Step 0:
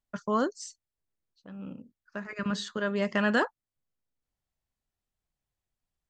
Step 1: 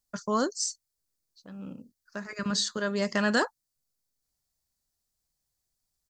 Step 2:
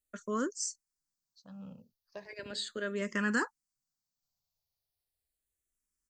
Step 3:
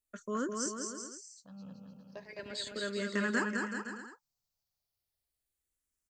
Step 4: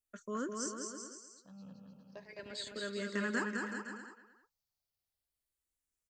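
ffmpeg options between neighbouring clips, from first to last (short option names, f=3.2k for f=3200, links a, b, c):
-af "firequalizer=gain_entry='entry(2000,0);entry(2900,-2);entry(4500,12)':delay=0.05:min_phase=1"
-filter_complex "[0:a]asplit=2[a][b];[b]afreqshift=-0.37[c];[a][c]amix=inputs=2:normalize=1,volume=-3.5dB"
-af "aecho=1:1:210|378|512.4|619.9|705.9:0.631|0.398|0.251|0.158|0.1,volume=-2dB"
-filter_complex "[0:a]asplit=2[a][b];[b]adelay=310,highpass=300,lowpass=3.4k,asoftclip=type=hard:threshold=-26.5dB,volume=-14dB[c];[a][c]amix=inputs=2:normalize=0,volume=-3.5dB"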